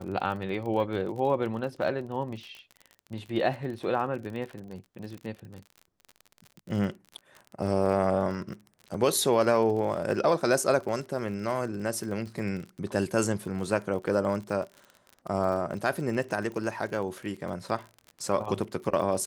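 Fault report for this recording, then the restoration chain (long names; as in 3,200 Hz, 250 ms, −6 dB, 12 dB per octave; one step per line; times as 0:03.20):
surface crackle 41 per second −36 dBFS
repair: click removal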